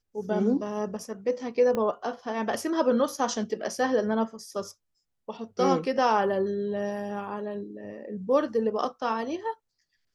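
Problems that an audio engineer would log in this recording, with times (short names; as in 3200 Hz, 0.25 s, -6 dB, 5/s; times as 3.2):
1.75 pop -17 dBFS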